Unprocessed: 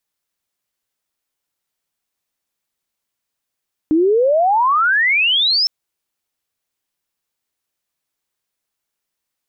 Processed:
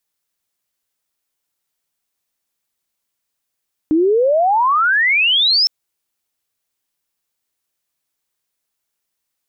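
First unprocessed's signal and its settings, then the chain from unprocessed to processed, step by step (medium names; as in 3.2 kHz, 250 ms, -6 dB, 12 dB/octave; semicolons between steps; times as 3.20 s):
sweep logarithmic 300 Hz -> 5.4 kHz -10.5 dBFS -> -12.5 dBFS 1.76 s
treble shelf 5.2 kHz +4 dB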